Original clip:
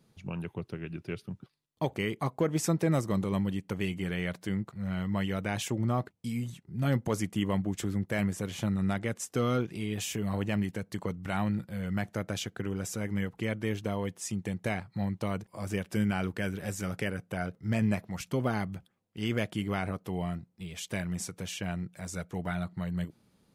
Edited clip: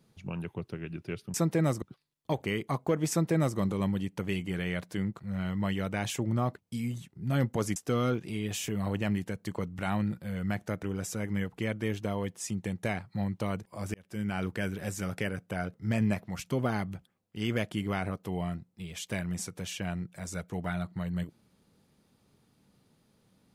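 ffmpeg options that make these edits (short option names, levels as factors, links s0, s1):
-filter_complex "[0:a]asplit=6[s0][s1][s2][s3][s4][s5];[s0]atrim=end=1.342[s6];[s1]atrim=start=2.618:end=3.102[s7];[s2]atrim=start=1.338:end=7.282[s8];[s3]atrim=start=9.228:end=12.302[s9];[s4]atrim=start=12.638:end=15.75,asetpts=PTS-STARTPTS,afade=t=out:st=3.108:d=0.004:c=hsin[s10];[s5]atrim=start=15.75,asetpts=PTS-STARTPTS,afade=t=in:d=0.53[s11];[s6][s7]acrossfade=d=0.004:c1=hsin:c2=hsin[s12];[s12][s8]acrossfade=d=0.004:c1=hsin:c2=hsin[s13];[s13][s9]acrossfade=d=0.004:c1=hsin:c2=hsin[s14];[s10][s11]concat=n=2:v=0:a=1[s15];[s14][s15]acrossfade=d=0.004:c1=hsin:c2=hsin"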